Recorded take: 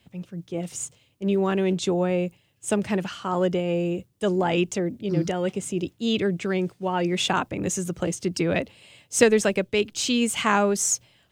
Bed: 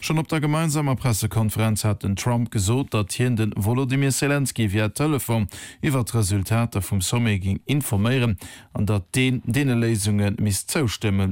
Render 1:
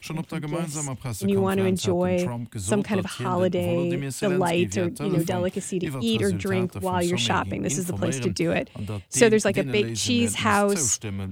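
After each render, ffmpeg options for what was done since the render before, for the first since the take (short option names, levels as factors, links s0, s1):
-filter_complex "[1:a]volume=0.316[s0];[0:a][s0]amix=inputs=2:normalize=0"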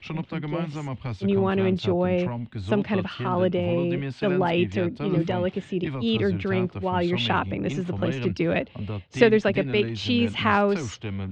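-af "lowpass=f=3900:w=0.5412,lowpass=f=3900:w=1.3066"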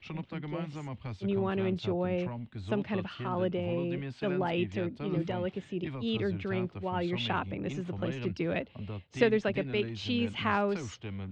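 -af "volume=0.398"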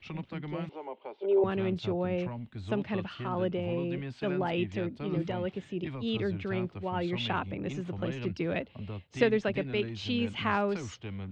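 -filter_complex "[0:a]asettb=1/sr,asplit=3[s0][s1][s2];[s0]atrim=end=0.694[s3];[s1]atrim=start=0.69:end=1.44,asetpts=PTS-STARTPTS,afade=t=in:d=0.004:c=qsin,afade=t=out:st=0.746:d=0.004:c=qsin,highpass=f=360:w=0.5412,highpass=f=360:w=1.3066,equalizer=f=400:t=q:w=4:g=10,equalizer=f=560:t=q:w=4:g=7,equalizer=f=880:t=q:w=4:g=9,equalizer=f=1200:t=q:w=4:g=-7,equalizer=f=1800:t=q:w=4:g=-10,equalizer=f=2500:t=q:w=4:g=-4,lowpass=f=3000:w=0.5412,lowpass=f=3000:w=1.3066[s4];[s2]atrim=start=1.436[s5];[s3][s4]acrossfade=d=0.004:c1=hsin:c2=qsin[s6];[s6][s5]acrossfade=d=0.004:c1=qsin:c2=hsin"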